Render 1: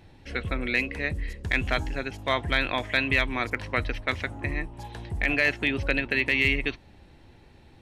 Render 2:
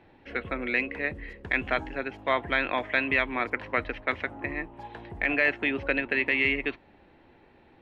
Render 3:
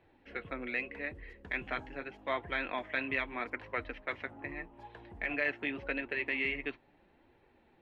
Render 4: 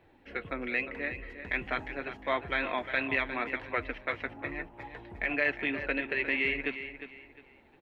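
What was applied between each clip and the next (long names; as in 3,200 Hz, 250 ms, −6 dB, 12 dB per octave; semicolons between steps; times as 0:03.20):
three-way crossover with the lows and the highs turned down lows −13 dB, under 220 Hz, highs −23 dB, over 3,000 Hz; level +1 dB
flanger 0.81 Hz, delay 1.6 ms, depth 6.6 ms, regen −40%; level −5 dB
repeating echo 355 ms, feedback 29%, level −11 dB; level +4 dB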